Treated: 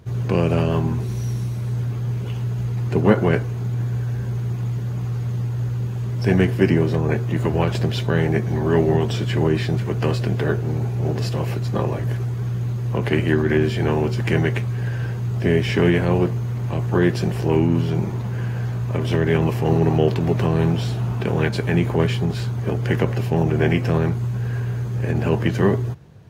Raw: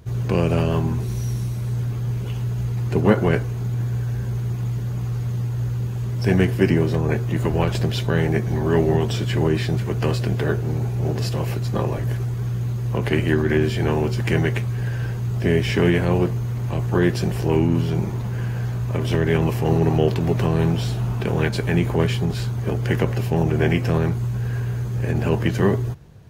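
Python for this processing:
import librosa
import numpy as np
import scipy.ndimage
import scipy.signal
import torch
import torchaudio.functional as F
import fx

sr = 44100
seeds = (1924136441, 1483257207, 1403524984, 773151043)

y = scipy.signal.sosfilt(scipy.signal.butter(2, 75.0, 'highpass', fs=sr, output='sos'), x)
y = fx.high_shelf(y, sr, hz=6000.0, db=-6.0)
y = y * 10.0 ** (1.0 / 20.0)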